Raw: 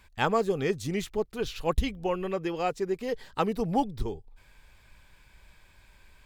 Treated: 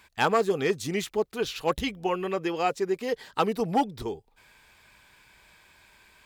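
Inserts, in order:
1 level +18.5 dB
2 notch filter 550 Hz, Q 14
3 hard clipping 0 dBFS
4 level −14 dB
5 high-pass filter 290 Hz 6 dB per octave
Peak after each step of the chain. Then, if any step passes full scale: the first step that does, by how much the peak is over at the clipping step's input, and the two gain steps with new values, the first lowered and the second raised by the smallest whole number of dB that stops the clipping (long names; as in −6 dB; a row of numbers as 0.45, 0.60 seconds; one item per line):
+7.0, +7.0, 0.0, −14.0, −10.5 dBFS
step 1, 7.0 dB
step 1 +11.5 dB, step 4 −7 dB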